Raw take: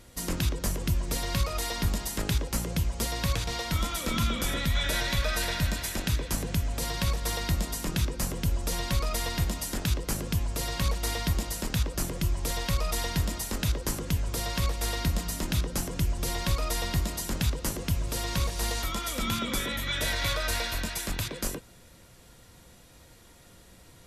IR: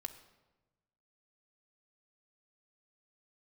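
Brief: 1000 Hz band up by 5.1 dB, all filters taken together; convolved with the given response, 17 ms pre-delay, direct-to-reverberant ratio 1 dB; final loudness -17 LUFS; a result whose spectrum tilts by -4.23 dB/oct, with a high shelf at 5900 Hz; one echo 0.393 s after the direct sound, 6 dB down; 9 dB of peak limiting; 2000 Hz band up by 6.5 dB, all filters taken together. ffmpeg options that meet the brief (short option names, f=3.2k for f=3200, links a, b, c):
-filter_complex "[0:a]equalizer=f=1k:t=o:g=4.5,equalizer=f=2k:t=o:g=7.5,highshelf=f=5.9k:g=-8.5,alimiter=limit=-21.5dB:level=0:latency=1,aecho=1:1:393:0.501,asplit=2[a][b];[1:a]atrim=start_sample=2205,adelay=17[c];[b][c]afir=irnorm=-1:irlink=0,volume=1.5dB[d];[a][d]amix=inputs=2:normalize=0,volume=10.5dB"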